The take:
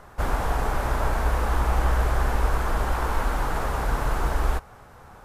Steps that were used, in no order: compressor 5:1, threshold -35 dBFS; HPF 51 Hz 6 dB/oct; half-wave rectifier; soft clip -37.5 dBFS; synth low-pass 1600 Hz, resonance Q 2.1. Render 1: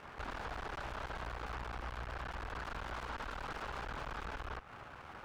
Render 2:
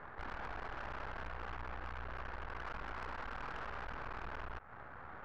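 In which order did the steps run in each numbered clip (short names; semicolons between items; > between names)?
synth low-pass > half-wave rectifier > HPF > compressor > soft clip; HPF > compressor > half-wave rectifier > synth low-pass > soft clip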